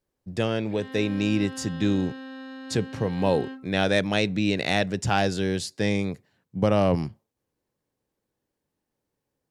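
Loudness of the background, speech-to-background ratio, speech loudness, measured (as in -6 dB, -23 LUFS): -39.5 LUFS, 14.0 dB, -25.5 LUFS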